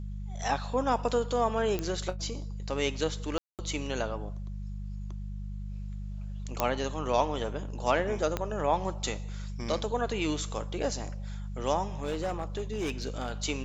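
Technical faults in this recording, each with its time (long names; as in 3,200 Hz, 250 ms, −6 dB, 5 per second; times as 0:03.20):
mains hum 50 Hz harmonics 4 −37 dBFS
0:01.79: click −17 dBFS
0:03.38–0:03.59: drop-out 208 ms
0:06.60: click −10 dBFS
0:08.37: click −15 dBFS
0:12.01–0:13.32: clipping −27 dBFS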